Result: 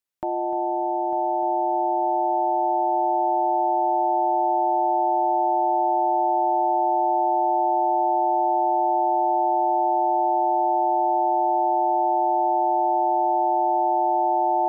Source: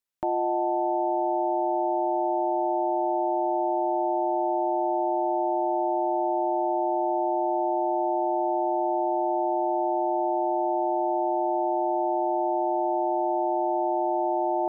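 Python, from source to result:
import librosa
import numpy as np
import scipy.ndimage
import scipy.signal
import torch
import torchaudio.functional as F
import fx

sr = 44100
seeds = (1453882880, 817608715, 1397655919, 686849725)

y = fx.echo_heads(x, sr, ms=300, heads='first and third', feedback_pct=65, wet_db=-14.0)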